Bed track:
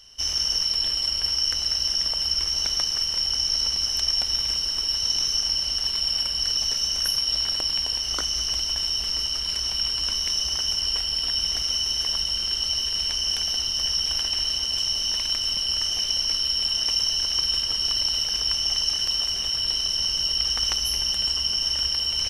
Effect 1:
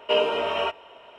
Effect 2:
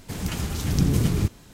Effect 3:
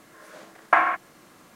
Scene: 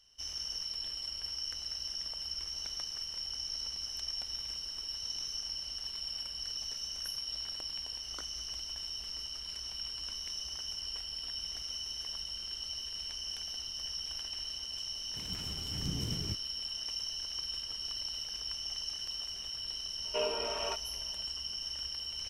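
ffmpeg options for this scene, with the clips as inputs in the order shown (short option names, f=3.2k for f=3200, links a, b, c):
-filter_complex "[0:a]volume=-15dB[a];[1:a]lowpass=3.5k[b];[2:a]atrim=end=1.53,asetpts=PTS-STARTPTS,volume=-16.5dB,afade=t=in:d=0.004:c=hsin,afade=t=out:st=1.526:d=0.004:c=hsin,adelay=15070[c];[b]atrim=end=1.18,asetpts=PTS-STARTPTS,volume=-12dB,afade=t=in:d=0.004:c=hsin,afade=t=out:st=1.176:d=0.004:c=hsin,adelay=20050[d];[a][c][d]amix=inputs=3:normalize=0"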